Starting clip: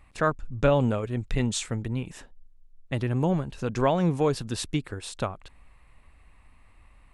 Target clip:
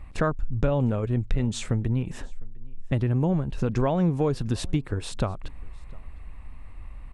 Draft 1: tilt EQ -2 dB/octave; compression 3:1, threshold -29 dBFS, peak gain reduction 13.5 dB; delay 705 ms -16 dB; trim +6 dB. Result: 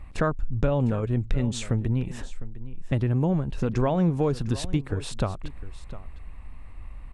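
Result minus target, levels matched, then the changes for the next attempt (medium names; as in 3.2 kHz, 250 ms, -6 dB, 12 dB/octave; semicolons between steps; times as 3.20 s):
echo-to-direct +10 dB
change: delay 705 ms -26 dB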